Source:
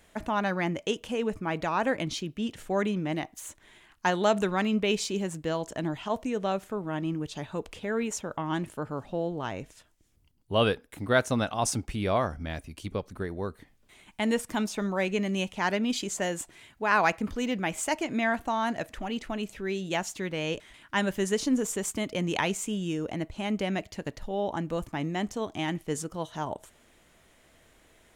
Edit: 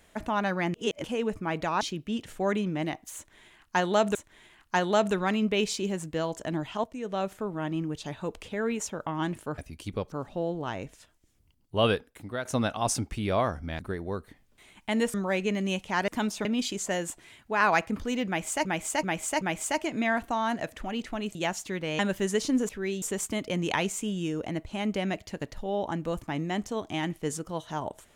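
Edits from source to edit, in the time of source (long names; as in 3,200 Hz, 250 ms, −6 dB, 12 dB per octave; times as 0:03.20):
0:00.74–0:01.04: reverse
0:01.81–0:02.11: remove
0:03.46–0:04.45: repeat, 2 plays
0:06.15–0:06.59: fade in, from −12 dB
0:10.71–0:11.22: fade out, to −14 dB
0:12.56–0:13.10: move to 0:08.89
0:14.45–0:14.82: move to 0:15.76
0:17.58–0:17.96: repeat, 4 plays
0:19.52–0:19.85: move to 0:21.67
0:20.49–0:20.97: remove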